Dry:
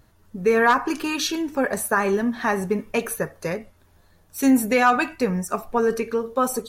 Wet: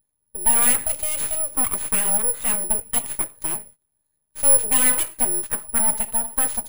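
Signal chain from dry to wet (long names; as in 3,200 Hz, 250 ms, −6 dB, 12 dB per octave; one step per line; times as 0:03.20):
noise gate −45 dBFS, range −19 dB
pitch vibrato 0.48 Hz 44 cents
parametric band 1,400 Hz −6.5 dB 0.36 octaves
full-wave rectification
bad sample-rate conversion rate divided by 4×, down filtered, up zero stuff
level −4.5 dB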